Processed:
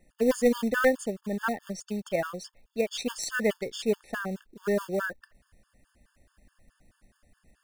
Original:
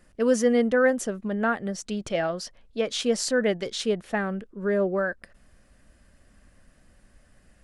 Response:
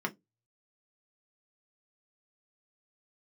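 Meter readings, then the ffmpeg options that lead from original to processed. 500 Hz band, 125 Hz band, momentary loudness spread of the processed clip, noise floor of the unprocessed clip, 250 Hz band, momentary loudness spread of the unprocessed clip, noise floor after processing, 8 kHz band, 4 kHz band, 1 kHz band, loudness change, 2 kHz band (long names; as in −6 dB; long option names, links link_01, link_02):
−3.5 dB, −4.5 dB, 11 LU, −60 dBFS, −4.0 dB, 10 LU, −73 dBFS, −4.5 dB, −5.5 dB, −3.0 dB, −3.5 dB, −2.0 dB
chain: -af "acrusher=bits=5:mode=log:mix=0:aa=0.000001,aeval=exprs='0.335*(cos(1*acos(clip(val(0)/0.335,-1,1)))-cos(1*PI/2))+0.119*(cos(2*acos(clip(val(0)/0.335,-1,1)))-cos(2*PI/2))+0.0335*(cos(4*acos(clip(val(0)/0.335,-1,1)))-cos(4*PI/2))+0.0133*(cos(7*acos(clip(val(0)/0.335,-1,1)))-cos(7*PI/2))':channel_layout=same,afftfilt=real='re*gt(sin(2*PI*4.7*pts/sr)*(1-2*mod(floor(b*sr/1024/900),2)),0)':imag='im*gt(sin(2*PI*4.7*pts/sr)*(1-2*mod(floor(b*sr/1024/900),2)),0)':win_size=1024:overlap=0.75"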